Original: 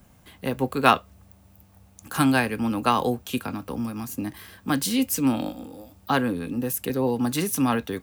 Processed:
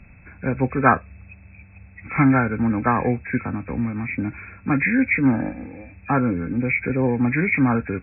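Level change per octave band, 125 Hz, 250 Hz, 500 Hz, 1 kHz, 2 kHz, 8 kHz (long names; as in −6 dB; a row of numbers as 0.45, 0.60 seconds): +7.5 dB, +4.0 dB, +1.5 dB, +1.0 dB, +7.0 dB, below −40 dB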